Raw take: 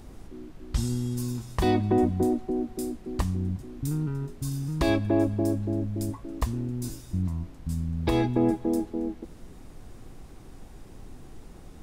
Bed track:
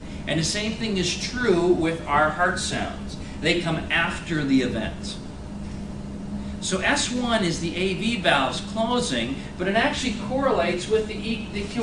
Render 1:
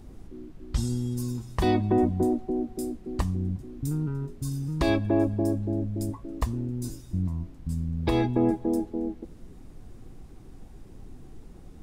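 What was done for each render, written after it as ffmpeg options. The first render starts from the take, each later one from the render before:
-af "afftdn=nr=6:nf=-47"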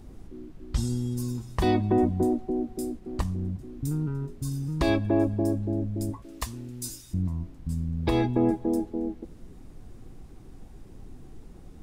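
-filter_complex "[0:a]asettb=1/sr,asplit=3[a][b][c];[a]atrim=end=2.994[d];[b]atrim=start=2.99:end=3.62,asetpts=PTS-STARTPTS,afade=t=in:d=0.004:c=qsin,afade=t=out:st=0.626:d=0.004:c=qsin,aeval=exprs='if(lt(val(0),0),0.708*val(0),val(0))':c=same[e];[c]atrim=start=3.616[f];[d][e]acrossfade=d=0.004:c1=hsin:c2=qsin[g];[g][f]acrossfade=d=0.004:c1=qsin:c2=hsin,asettb=1/sr,asplit=3[h][i][j];[h]atrim=end=6.224[k];[i]atrim=start=6.22:end=7.14,asetpts=PTS-STARTPTS,afade=t=in:d=0.004:c=qsin,afade=t=out:st=0.916:d=0.004:c=qsin,tiltshelf=f=1.3k:g=-8.5[l];[j]atrim=start=7.136[m];[k][l]acrossfade=d=0.004:c1=hsin:c2=qsin[n];[n][m]acrossfade=d=0.004:c1=qsin:c2=hsin"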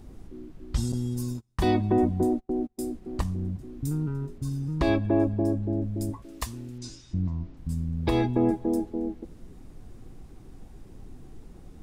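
-filter_complex "[0:a]asettb=1/sr,asplit=3[a][b][c];[a]atrim=end=0.924[d];[b]atrim=start=0.92:end=2.79,asetpts=PTS-STARTPTS,afade=t=in:d=0.004:c=qsin,afade=t=out:st=1.866:d=0.004:c=qsin,agate=range=-31dB:threshold=-32dB:ratio=16:release=100:detection=peak[e];[c]atrim=start=2.786[f];[d][e]acrossfade=d=0.004:c1=hsin:c2=qsin[g];[g][f]acrossfade=d=0.004:c1=qsin:c2=hsin,asettb=1/sr,asplit=3[h][i][j];[h]atrim=end=4.384[k];[i]atrim=start=4.38:end=5.82,asetpts=PTS-STARTPTS,afade=t=in:d=0.004:c=qsin,afade=t=out:st=1.436:d=0.004:c=qsin,aemphasis=mode=reproduction:type=cd[l];[j]atrim=start=5.816[m];[k][l]acrossfade=d=0.004:c1=hsin:c2=qsin[n];[n][m]acrossfade=d=0.004:c1=qsin:c2=hsin,asettb=1/sr,asplit=3[o][p][q];[o]atrim=end=6.784[r];[p]atrim=start=6.78:end=7.57,asetpts=PTS-STARTPTS,afade=t=in:d=0.004:c=qsin,afade=t=out:st=0.786:d=0.004:c=qsin,lowpass=f=5.8k:w=0.5412,lowpass=f=5.8k:w=1.3066[s];[q]atrim=start=7.566[t];[r][s]acrossfade=d=0.004:c1=hsin:c2=qsin[u];[u][t]acrossfade=d=0.004:c1=qsin:c2=hsin"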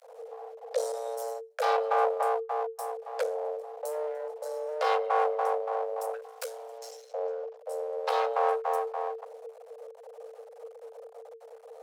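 -af "aeval=exprs='max(val(0),0)':c=same,afreqshift=450"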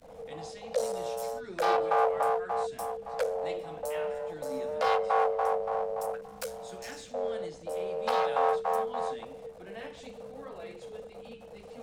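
-filter_complex "[1:a]volume=-24dB[a];[0:a][a]amix=inputs=2:normalize=0"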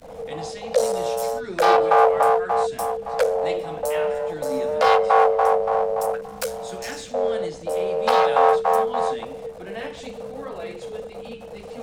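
-af "volume=10dB"

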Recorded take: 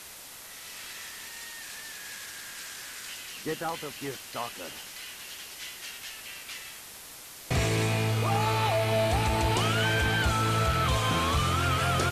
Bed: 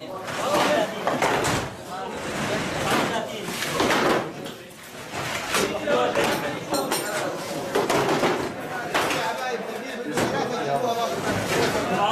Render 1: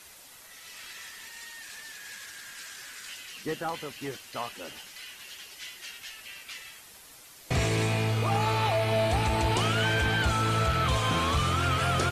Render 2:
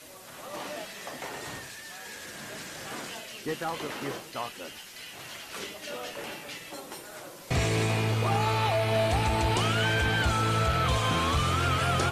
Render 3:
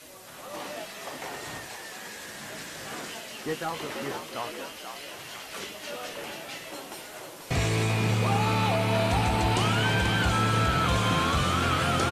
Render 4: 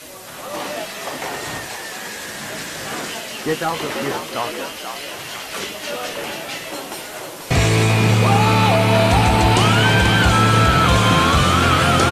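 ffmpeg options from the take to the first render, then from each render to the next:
-af "afftdn=nr=7:nf=-46"
-filter_complex "[1:a]volume=-17.5dB[a];[0:a][a]amix=inputs=2:normalize=0"
-filter_complex "[0:a]asplit=2[a][b];[b]adelay=19,volume=-12dB[c];[a][c]amix=inputs=2:normalize=0,asplit=7[d][e][f][g][h][i][j];[e]adelay=486,afreqshift=75,volume=-7.5dB[k];[f]adelay=972,afreqshift=150,volume=-13.7dB[l];[g]adelay=1458,afreqshift=225,volume=-19.9dB[m];[h]adelay=1944,afreqshift=300,volume=-26.1dB[n];[i]adelay=2430,afreqshift=375,volume=-32.3dB[o];[j]adelay=2916,afreqshift=450,volume=-38.5dB[p];[d][k][l][m][n][o][p]amix=inputs=7:normalize=0"
-af "volume=10.5dB"

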